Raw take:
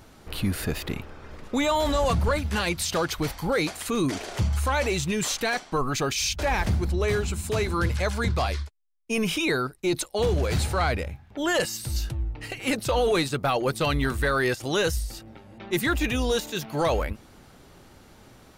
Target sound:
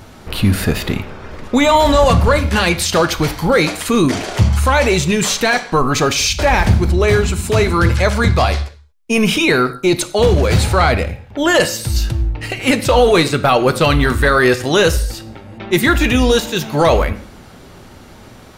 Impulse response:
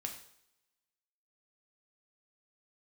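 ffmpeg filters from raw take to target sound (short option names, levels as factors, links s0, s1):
-filter_complex "[0:a]asplit=2[s0][s1];[1:a]atrim=start_sample=2205,afade=t=out:st=0.29:d=0.01,atrim=end_sample=13230,highshelf=f=9000:g=-12[s2];[s1][s2]afir=irnorm=-1:irlink=0,volume=1.12[s3];[s0][s3]amix=inputs=2:normalize=0,volume=2.11"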